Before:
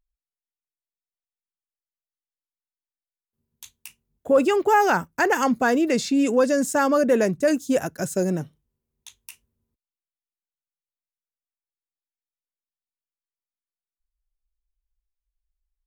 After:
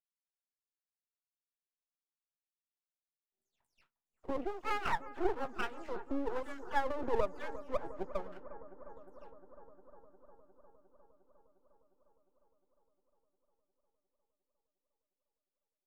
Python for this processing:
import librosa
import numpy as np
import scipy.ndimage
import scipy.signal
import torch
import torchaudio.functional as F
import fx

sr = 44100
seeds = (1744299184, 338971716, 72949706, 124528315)

y = fx.spec_delay(x, sr, highs='early', ms=210)
y = fx.wah_lfo(y, sr, hz=1.1, low_hz=350.0, high_hz=1400.0, q=7.1)
y = np.maximum(y, 0.0)
y = fx.echo_bbd(y, sr, ms=355, stages=4096, feedback_pct=76, wet_db=-15)